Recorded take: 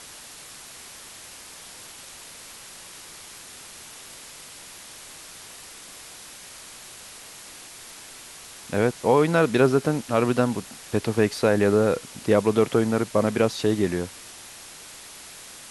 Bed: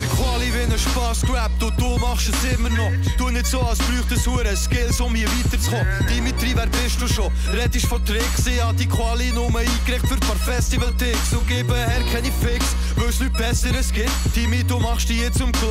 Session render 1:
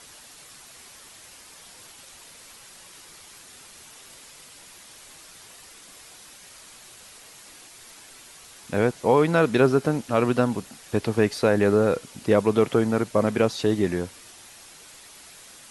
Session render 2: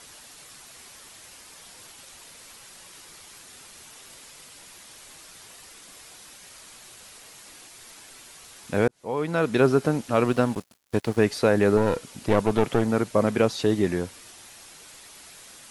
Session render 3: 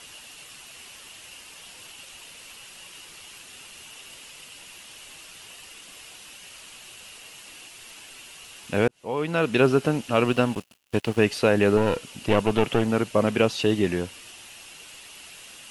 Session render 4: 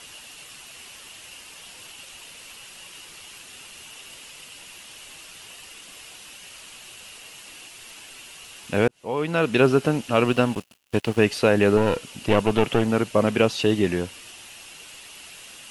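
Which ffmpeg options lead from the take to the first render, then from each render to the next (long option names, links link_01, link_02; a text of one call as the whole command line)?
ffmpeg -i in.wav -af "afftdn=noise_reduction=6:noise_floor=-44" out.wav
ffmpeg -i in.wav -filter_complex "[0:a]asettb=1/sr,asplit=3[link_01][link_02][link_03];[link_01]atrim=end=10.244[link_04];[link_02]atrim=start=10.24:end=11.18,asetpts=PTS-STARTPTS,afade=type=in:duration=0.004:curve=qsin,afade=type=out:start_time=0.936:duration=0.004:curve=qsin,aeval=exprs='sgn(val(0))*max(abs(val(0))-0.0106,0)':channel_layout=same[link_05];[link_03]atrim=start=11.176[link_06];[link_04][link_05]acrossfade=duration=0.004:curve1=hsin:curve2=qsin[link_07];[link_07][link_06]acrossfade=duration=0.004:curve1=qsin:curve2=hsin,asettb=1/sr,asplit=3[link_08][link_09][link_10];[link_08]atrim=end=11.774[link_11];[link_09]atrim=start=11.77:end=12.88,asetpts=PTS-STARTPTS,afade=type=in:duration=0.004:curve=qsin,afade=type=out:start_time=1.106:duration=0.004:curve=qsin,aeval=exprs='clip(val(0),-1,0.0473)':channel_layout=same[link_12];[link_10]atrim=start=12.876[link_13];[link_11][link_12]acrossfade=duration=0.004:curve1=hsin:curve2=qsin[link_14];[link_14][link_13]acrossfade=duration=0.004:curve1=qsin:curve2=hsin,asplit=2[link_15][link_16];[link_15]atrim=end=8.88,asetpts=PTS-STARTPTS,afade=type=out:start_time=8.876:duration=0.004:curve=hsin[link_17];[link_16]atrim=start=8.88,asetpts=PTS-STARTPTS,afade=type=in:duration=0.82[link_18];[link_17][link_18]concat=n=2:v=0:a=1" out.wav
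ffmpeg -i in.wav -af "equalizer=frequency=2800:width_type=o:width=0.34:gain=12.5" out.wav
ffmpeg -i in.wav -af "volume=1.5dB" out.wav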